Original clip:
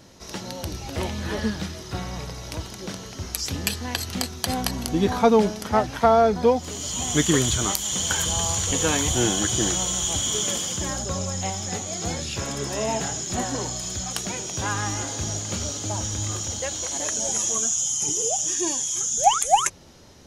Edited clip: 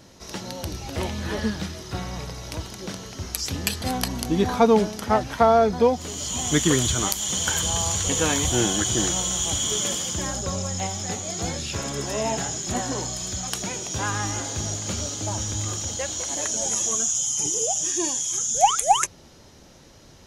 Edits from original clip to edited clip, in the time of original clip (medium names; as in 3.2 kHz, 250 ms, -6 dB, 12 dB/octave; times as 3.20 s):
3.82–4.45 s: delete